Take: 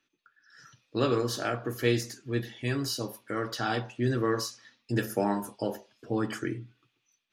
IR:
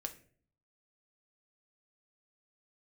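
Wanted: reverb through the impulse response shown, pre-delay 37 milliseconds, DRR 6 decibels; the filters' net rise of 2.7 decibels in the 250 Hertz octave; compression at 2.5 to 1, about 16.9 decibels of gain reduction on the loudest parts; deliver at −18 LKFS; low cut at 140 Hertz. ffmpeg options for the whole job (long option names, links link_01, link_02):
-filter_complex "[0:a]highpass=140,equalizer=frequency=250:width_type=o:gain=4,acompressor=threshold=-47dB:ratio=2.5,asplit=2[link_01][link_02];[1:a]atrim=start_sample=2205,adelay=37[link_03];[link_02][link_03]afir=irnorm=-1:irlink=0,volume=-4dB[link_04];[link_01][link_04]amix=inputs=2:normalize=0,volume=26dB"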